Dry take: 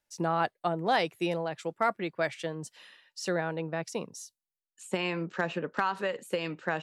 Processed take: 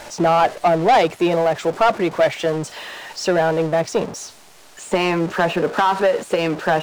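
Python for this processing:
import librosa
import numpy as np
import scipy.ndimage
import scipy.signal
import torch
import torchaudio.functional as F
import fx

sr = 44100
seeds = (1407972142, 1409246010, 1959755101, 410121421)

y = x + 0.5 * 10.0 ** (-38.0 / 20.0) * np.sign(x)
y = scipy.signal.sosfilt(scipy.signal.butter(2, 8100.0, 'lowpass', fs=sr, output='sos'), y)
y = fx.peak_eq(y, sr, hz=620.0, db=9.0, octaves=1.9)
y = fx.notch(y, sr, hz=520.0, q=12.0)
y = fx.leveller(y, sr, passes=2)
y = y * librosa.db_to_amplitude(1.0)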